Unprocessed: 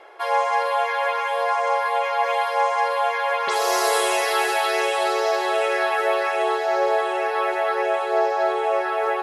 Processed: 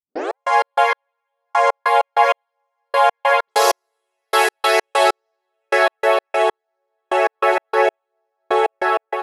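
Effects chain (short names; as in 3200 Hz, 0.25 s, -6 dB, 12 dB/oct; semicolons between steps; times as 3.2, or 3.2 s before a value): tape start at the beginning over 0.37 s; AGC; step gate ".x.x.x..." 97 bpm -60 dB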